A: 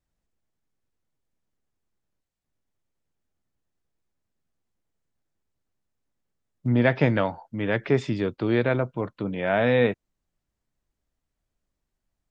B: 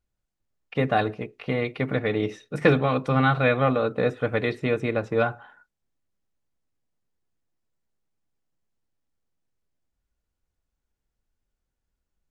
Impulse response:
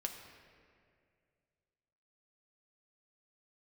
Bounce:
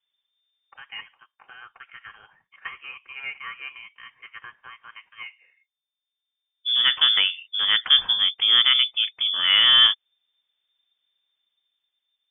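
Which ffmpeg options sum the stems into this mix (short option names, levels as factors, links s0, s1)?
-filter_complex "[0:a]dynaudnorm=f=180:g=11:m=1.5,volume=1.19[s0];[1:a]highpass=f=880:w=0.5412,highpass=f=880:w=1.3066,volume=0.335,asplit=2[s1][s2];[s2]apad=whole_len=542529[s3];[s0][s3]sidechaincompress=threshold=0.00178:ratio=10:attack=11:release=1340[s4];[s4][s1]amix=inputs=2:normalize=0,lowpass=f=3100:t=q:w=0.5098,lowpass=f=3100:t=q:w=0.6013,lowpass=f=3100:t=q:w=0.9,lowpass=f=3100:t=q:w=2.563,afreqshift=-3600"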